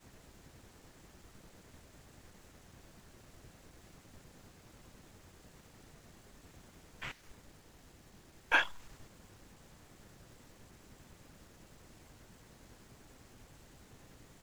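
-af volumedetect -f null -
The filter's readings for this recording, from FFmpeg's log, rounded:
mean_volume: -46.9 dB
max_volume: -14.8 dB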